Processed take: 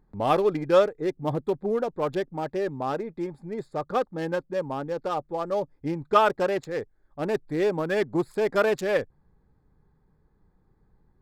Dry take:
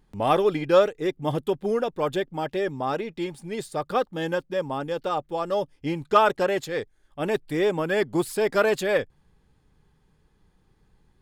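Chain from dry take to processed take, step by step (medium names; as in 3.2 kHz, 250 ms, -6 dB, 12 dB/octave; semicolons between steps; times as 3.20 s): local Wiener filter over 15 samples; trim -1 dB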